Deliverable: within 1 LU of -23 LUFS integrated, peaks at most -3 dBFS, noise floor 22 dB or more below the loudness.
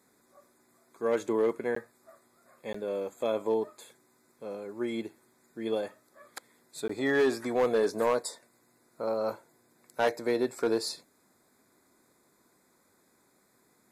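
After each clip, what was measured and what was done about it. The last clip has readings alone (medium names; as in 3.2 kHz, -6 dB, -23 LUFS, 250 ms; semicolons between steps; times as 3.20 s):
clipped samples 0.6%; clipping level -19.5 dBFS; dropouts 3; longest dropout 14 ms; loudness -31.0 LUFS; peak level -19.5 dBFS; loudness target -23.0 LUFS
-> clip repair -19.5 dBFS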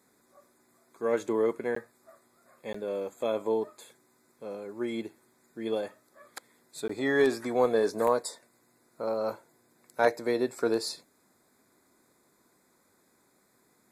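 clipped samples 0.0%; dropouts 3; longest dropout 14 ms
-> interpolate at 1.75/2.73/6.88 s, 14 ms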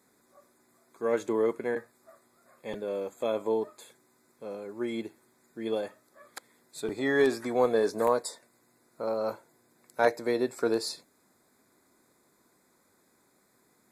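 dropouts 0; loudness -30.5 LUFS; peak level -11.0 dBFS; loudness target -23.0 LUFS
-> trim +7.5 dB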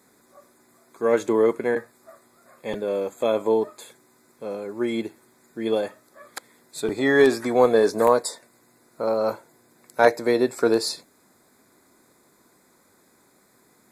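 loudness -23.0 LUFS; peak level -3.5 dBFS; noise floor -60 dBFS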